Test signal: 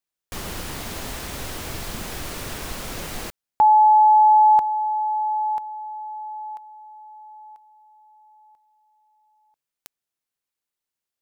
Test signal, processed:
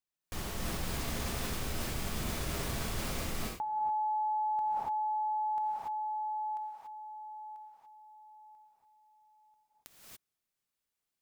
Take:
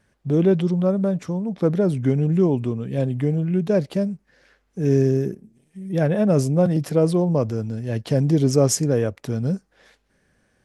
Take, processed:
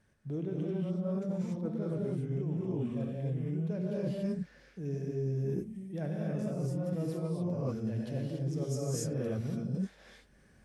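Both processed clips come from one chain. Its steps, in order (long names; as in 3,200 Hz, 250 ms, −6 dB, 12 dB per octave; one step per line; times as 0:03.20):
low-shelf EQ 220 Hz +4 dB
reverb whose tail is shaped and stops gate 310 ms rising, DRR −6.5 dB
reversed playback
downward compressor 12 to 1, threshold −23 dBFS
reversed playback
level −8 dB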